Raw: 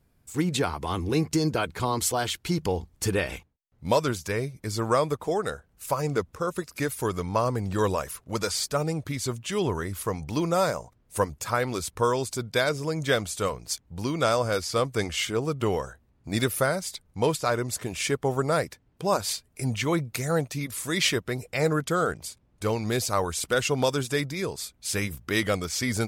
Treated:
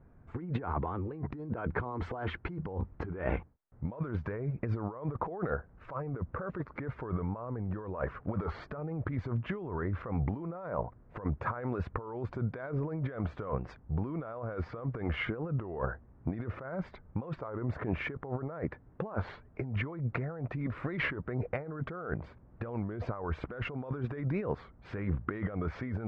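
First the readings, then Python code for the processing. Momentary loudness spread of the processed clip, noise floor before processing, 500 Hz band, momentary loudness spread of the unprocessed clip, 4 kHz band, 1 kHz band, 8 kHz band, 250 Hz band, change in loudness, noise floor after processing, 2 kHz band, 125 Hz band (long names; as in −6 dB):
5 LU, −65 dBFS, −12.0 dB, 7 LU, −22.0 dB, −11.0 dB, below −40 dB, −7.0 dB, −9.5 dB, −58 dBFS, −10.0 dB, −4.0 dB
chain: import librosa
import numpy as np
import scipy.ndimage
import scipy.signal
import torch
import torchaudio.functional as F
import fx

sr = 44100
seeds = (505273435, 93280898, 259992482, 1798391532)

y = scipy.signal.sosfilt(scipy.signal.butter(4, 1600.0, 'lowpass', fs=sr, output='sos'), x)
y = fx.over_compress(y, sr, threshold_db=-36.0, ratio=-1.0)
y = fx.record_warp(y, sr, rpm=33.33, depth_cents=160.0)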